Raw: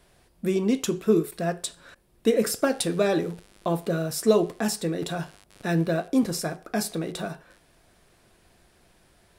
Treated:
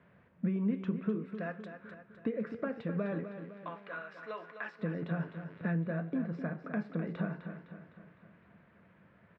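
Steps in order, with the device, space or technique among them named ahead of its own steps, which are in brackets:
0:01.25–0:01.66: RIAA equalisation recording
0:03.24–0:04.79: high-pass filter 1,400 Hz 12 dB per octave
bass amplifier (downward compressor 4 to 1, threshold −33 dBFS, peak gain reduction 15.5 dB; loudspeaker in its box 90–2,100 Hz, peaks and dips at 190 Hz +7 dB, 360 Hz −9 dB, 760 Hz −9 dB)
repeating echo 255 ms, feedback 52%, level −9.5 dB

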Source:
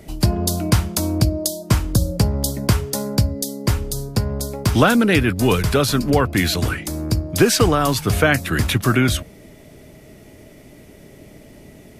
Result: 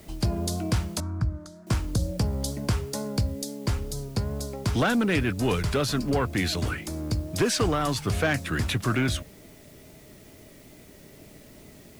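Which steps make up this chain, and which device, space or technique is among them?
compact cassette (soft clipping −9.5 dBFS, distortion −16 dB; low-pass filter 9,500 Hz 12 dB per octave; tape wow and flutter; white noise bed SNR 29 dB)
0:01.00–0:01.67: drawn EQ curve 160 Hz 0 dB, 520 Hz −18 dB, 1,400 Hz +6 dB, 2,800 Hz −18 dB, 6,500 Hz −17 dB, 13,000 Hz −26 dB
level −6.5 dB

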